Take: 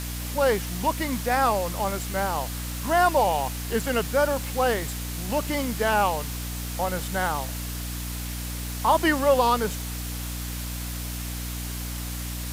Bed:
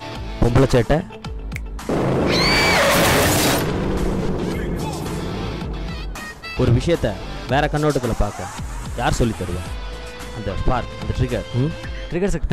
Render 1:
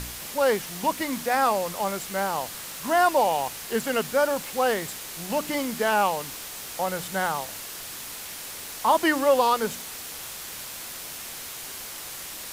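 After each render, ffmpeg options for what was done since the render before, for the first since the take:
-af "bandreject=f=60:t=h:w=4,bandreject=f=120:t=h:w=4,bandreject=f=180:t=h:w=4,bandreject=f=240:t=h:w=4,bandreject=f=300:t=h:w=4"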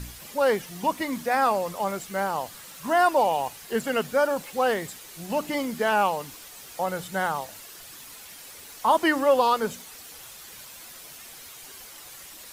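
-af "afftdn=nr=9:nf=-38"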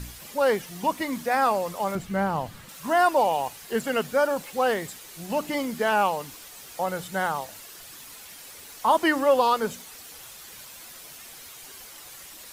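-filter_complex "[0:a]asettb=1/sr,asplit=3[a][b][c];[a]atrim=end=1.954[d];[b]atrim=start=1.95:end=2.69,asetpts=PTS-STARTPTS,afade=t=in:d=0.004:c=qsin,afade=t=out:st=0.736:d=0.004:c=qsin,bass=f=250:g=13,treble=f=4k:g=-8[e];[c]atrim=start=2.686[f];[d][e]acrossfade=d=0.004:c1=hsin:c2=qsin[g];[g][f]acrossfade=d=0.004:c1=qsin:c2=hsin"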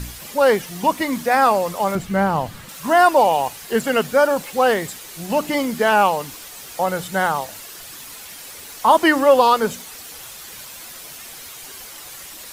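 -af "volume=7dB"

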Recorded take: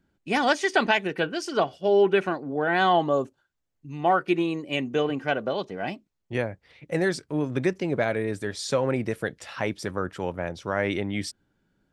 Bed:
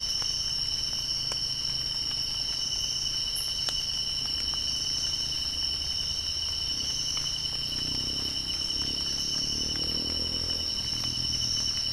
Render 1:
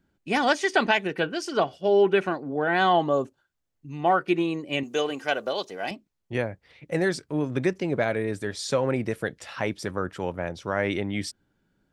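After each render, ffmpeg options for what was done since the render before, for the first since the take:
-filter_complex "[0:a]asettb=1/sr,asplit=3[a][b][c];[a]atrim=end=4.834[d];[b]atrim=start=4.83:end=5.91,asetpts=PTS-STARTPTS,afade=t=in:d=0.004:c=qsin,afade=t=out:st=1.076:d=0.004:c=qsin,bass=f=250:g=-13,treble=f=4k:g=14[e];[c]atrim=start=5.906[f];[d][e]acrossfade=d=0.004:c1=hsin:c2=qsin[g];[g][f]acrossfade=d=0.004:c1=qsin:c2=hsin"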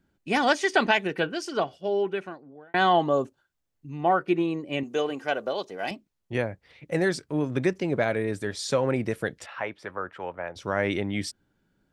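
-filter_complex "[0:a]asettb=1/sr,asplit=3[a][b][c];[a]atrim=end=3.904[d];[b]atrim=start=3.9:end=5.79,asetpts=PTS-STARTPTS,afade=t=in:d=0.004:c=qsin,afade=t=out:st=1.886:d=0.004:c=qsin,highshelf=f=2.1k:g=-7[e];[c]atrim=start=5.786[f];[d][e]acrossfade=d=0.004:c1=hsin:c2=qsin[g];[g][f]acrossfade=d=0.004:c1=qsin:c2=hsin,asettb=1/sr,asplit=3[h][i][j];[h]atrim=end=9.464[k];[i]atrim=start=9.46:end=10.56,asetpts=PTS-STARTPTS,afade=t=in:d=0.004:c=qsin,afade=t=out:st=1.096:d=0.004:c=qsin,acrossover=split=510 2900:gain=0.224 1 0.1[l][m][n];[l][m][n]amix=inputs=3:normalize=0[o];[j]atrim=start=10.556[p];[k][o]acrossfade=d=0.004:c1=hsin:c2=qsin[q];[q][p]acrossfade=d=0.004:c1=qsin:c2=hsin,asplit=2[r][s];[r]atrim=end=2.74,asetpts=PTS-STARTPTS,afade=t=out:st=1.15:d=1.59[t];[s]atrim=start=2.74,asetpts=PTS-STARTPTS,afade=t=in:d=0.004:c=hsin[u];[t][u]concat=n=2:v=0:a=1"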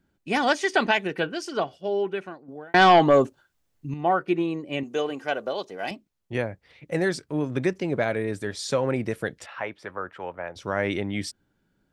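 -filter_complex "[0:a]asettb=1/sr,asplit=3[a][b][c];[a]atrim=end=2.484[d];[b]atrim=start=2.48:end=3.94,asetpts=PTS-STARTPTS,afade=t=in:d=0.004:c=qsin,afade=t=out:st=1.456:d=0.004:c=qsin,aeval=exprs='0.335*sin(PI/2*1.58*val(0)/0.335)':c=same[e];[c]atrim=start=3.936[f];[d][e]acrossfade=d=0.004:c1=hsin:c2=qsin[g];[g][f]acrossfade=d=0.004:c1=qsin:c2=hsin"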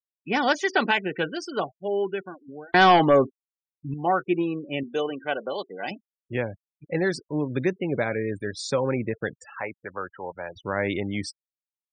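-af "afftfilt=real='re*gte(hypot(re,im),0.0178)':imag='im*gte(hypot(re,im),0.0178)':win_size=1024:overlap=0.75,bandreject=f=660:w=12"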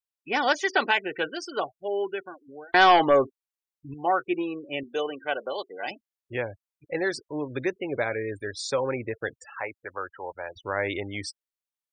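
-af "equalizer=f=180:w=1.4:g=-14.5"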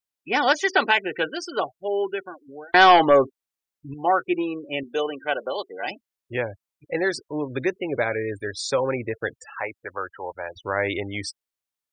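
-af "volume=3.5dB"

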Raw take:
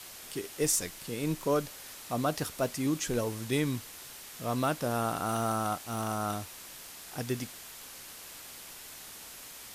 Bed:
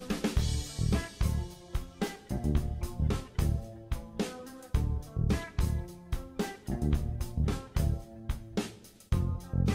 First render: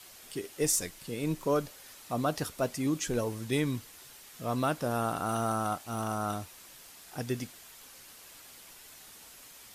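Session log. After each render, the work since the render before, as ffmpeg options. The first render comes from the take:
-af "afftdn=nr=6:nf=-47"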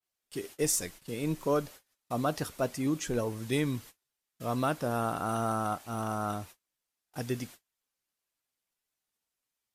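-af "agate=range=-36dB:threshold=-46dB:ratio=16:detection=peak,adynamicequalizer=threshold=0.00398:dfrequency=2600:dqfactor=0.7:tfrequency=2600:tqfactor=0.7:attack=5:release=100:ratio=0.375:range=2:mode=cutabove:tftype=highshelf"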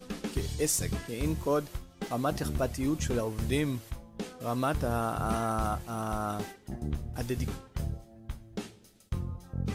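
-filter_complex "[1:a]volume=-5dB[a];[0:a][a]amix=inputs=2:normalize=0"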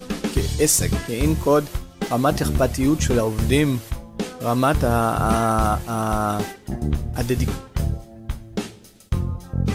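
-af "volume=11dB"

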